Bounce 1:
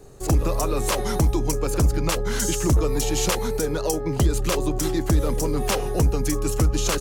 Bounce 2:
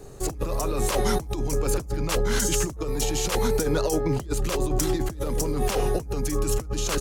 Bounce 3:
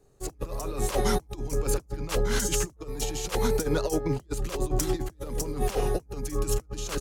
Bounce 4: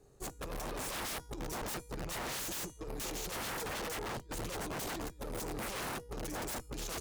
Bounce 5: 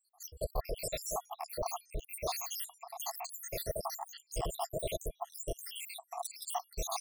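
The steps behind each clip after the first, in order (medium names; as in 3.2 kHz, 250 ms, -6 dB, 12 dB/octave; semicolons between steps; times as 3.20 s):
compressor with a negative ratio -24 dBFS, ratio -0.5
upward expansion 2.5:1, over -33 dBFS
feedback comb 480 Hz, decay 0.59 s, mix 50%; integer overflow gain 31.5 dB; valve stage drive 44 dB, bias 0.4; trim +6.5 dB
random holes in the spectrogram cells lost 83%; static phaser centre 640 Hz, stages 4; small resonant body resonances 680/1100 Hz, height 10 dB, ringing for 25 ms; trim +9 dB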